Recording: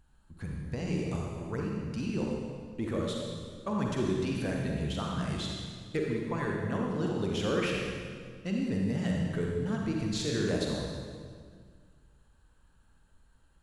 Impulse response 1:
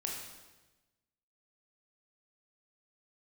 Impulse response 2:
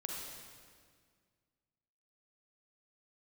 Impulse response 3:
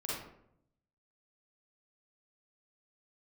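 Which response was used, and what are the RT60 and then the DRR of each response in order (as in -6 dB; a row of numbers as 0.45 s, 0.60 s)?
2; 1.1 s, 1.9 s, 0.75 s; -1.5 dB, -1.5 dB, -7.0 dB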